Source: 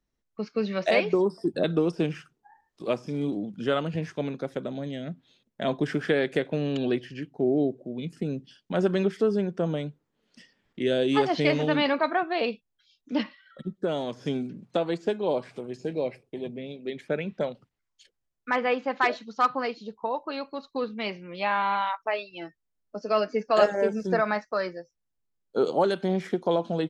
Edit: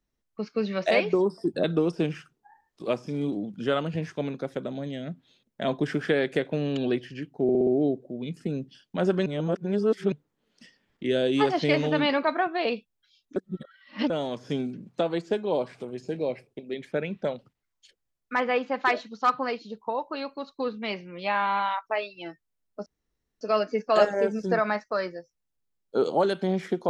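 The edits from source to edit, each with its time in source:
7.43 s: stutter 0.06 s, 5 plays
9.02–9.88 s: reverse
13.12–13.86 s: reverse
16.35–16.75 s: delete
23.02 s: insert room tone 0.55 s

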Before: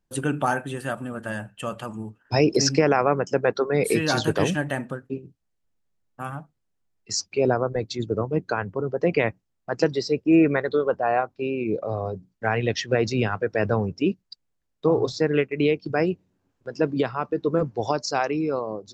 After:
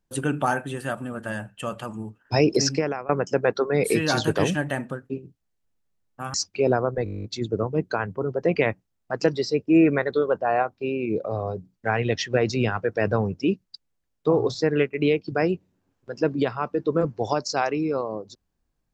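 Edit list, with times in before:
2.55–3.09 s: fade out, to -22.5 dB
6.34–7.12 s: delete
7.82 s: stutter 0.02 s, 11 plays

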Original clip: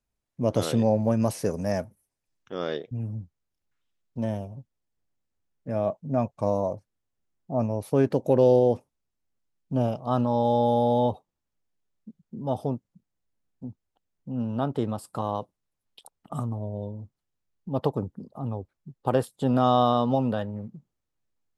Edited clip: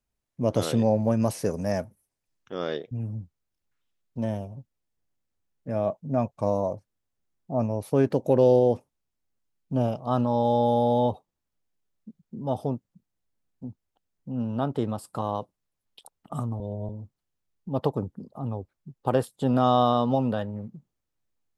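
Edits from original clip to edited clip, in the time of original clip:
16.60–16.89 s: reverse

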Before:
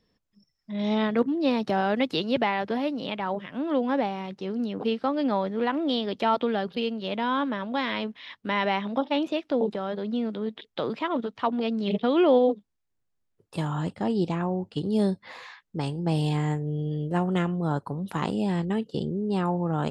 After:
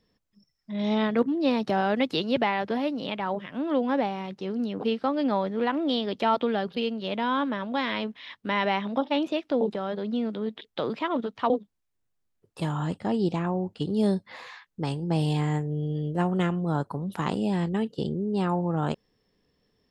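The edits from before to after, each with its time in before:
11.50–12.46 s: delete

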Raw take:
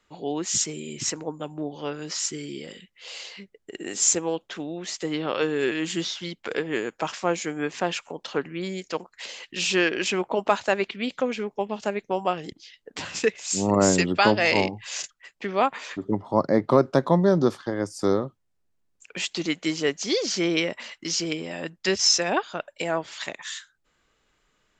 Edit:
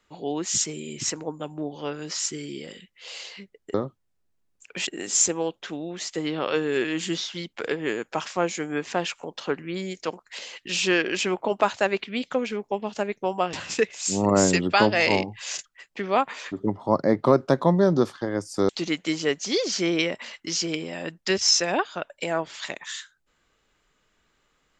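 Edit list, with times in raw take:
12.40–12.98 s: delete
18.14–19.27 s: move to 3.74 s

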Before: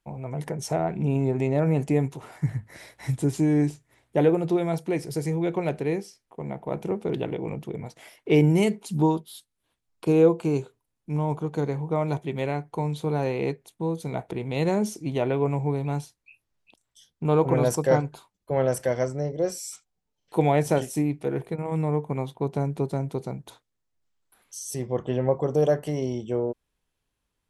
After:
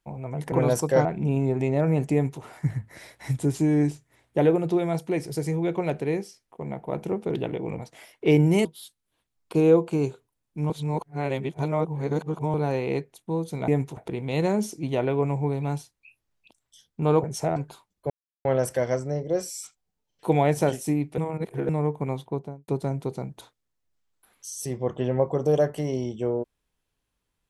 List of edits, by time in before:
0.52–0.84 s: swap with 17.47–18.00 s
1.92–2.21 s: copy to 14.20 s
7.57–7.82 s: delete
8.69–9.17 s: delete
11.22–13.06 s: reverse
18.54 s: insert silence 0.35 s
21.27–21.78 s: reverse
22.29–22.77 s: studio fade out

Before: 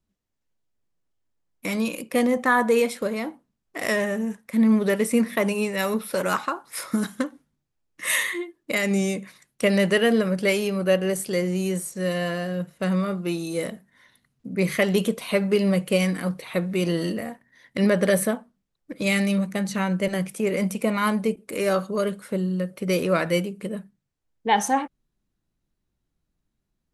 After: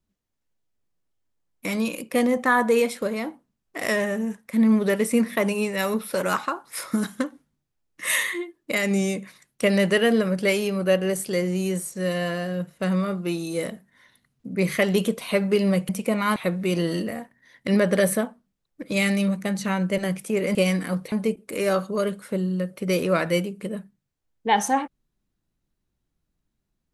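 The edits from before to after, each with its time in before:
15.89–16.46 s: swap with 20.65–21.12 s

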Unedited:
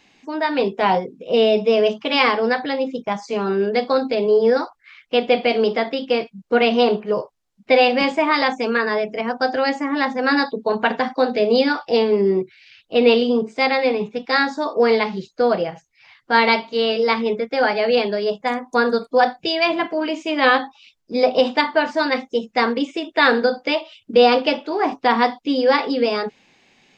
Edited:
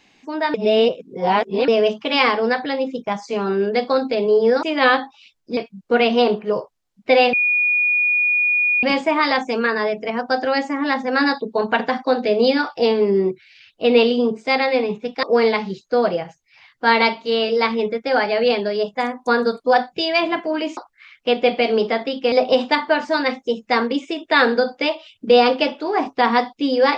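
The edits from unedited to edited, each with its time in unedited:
0.54–1.68 s: reverse
4.63–6.18 s: swap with 20.24–21.18 s
7.94 s: add tone 2.45 kHz -14.5 dBFS 1.50 s
14.34–14.70 s: delete

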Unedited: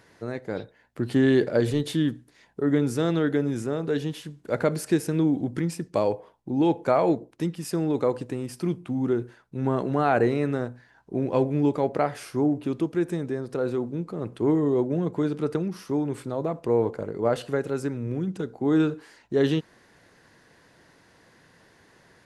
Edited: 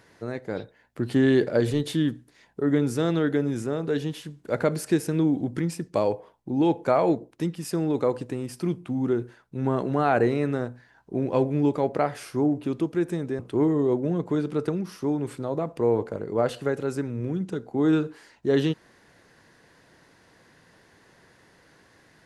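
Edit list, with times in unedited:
13.39–14.26 s: delete

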